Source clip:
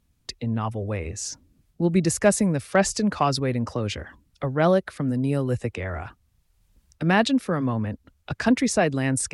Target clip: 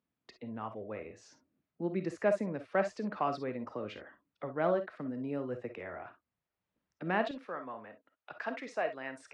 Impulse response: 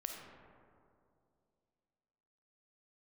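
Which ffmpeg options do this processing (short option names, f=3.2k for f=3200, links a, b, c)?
-filter_complex "[0:a]asetnsamples=n=441:p=0,asendcmd='7.31 highpass f 590',highpass=250,lowpass=2.2k[a];[1:a]atrim=start_sample=2205,atrim=end_sample=3087[b];[a][b]afir=irnorm=-1:irlink=0,volume=-6.5dB"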